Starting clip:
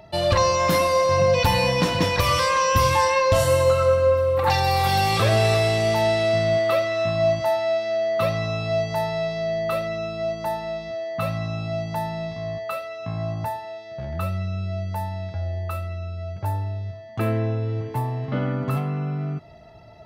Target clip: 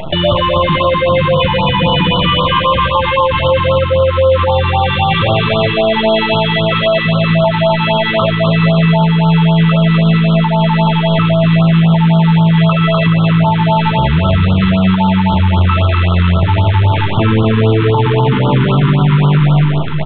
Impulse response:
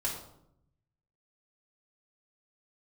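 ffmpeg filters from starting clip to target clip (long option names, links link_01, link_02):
-filter_complex "[0:a]equalizer=frequency=160:width_type=o:width=0.33:gain=11,equalizer=frequency=1000:width_type=o:width=0.33:gain=6,equalizer=frequency=3150:width_type=o:width=0.33:gain=8,acompressor=threshold=-27dB:ratio=16,acrusher=bits=7:dc=4:mix=0:aa=0.000001,aresample=8000,aresample=44100,aecho=1:1:250|425|547.5|633.2|693.3:0.631|0.398|0.251|0.158|0.1,asplit=2[link_01][link_02];[1:a]atrim=start_sample=2205,asetrate=25137,aresample=44100[link_03];[link_02][link_03]afir=irnorm=-1:irlink=0,volume=-20dB[link_04];[link_01][link_04]amix=inputs=2:normalize=0,alimiter=level_in=25.5dB:limit=-1dB:release=50:level=0:latency=1,afftfilt=real='re*(1-between(b*sr/1024,580*pow(2100/580,0.5+0.5*sin(2*PI*3.8*pts/sr))/1.41,580*pow(2100/580,0.5+0.5*sin(2*PI*3.8*pts/sr))*1.41))':imag='im*(1-between(b*sr/1024,580*pow(2100/580,0.5+0.5*sin(2*PI*3.8*pts/sr))/1.41,580*pow(2100/580,0.5+0.5*sin(2*PI*3.8*pts/sr))*1.41))':win_size=1024:overlap=0.75,volume=-2dB"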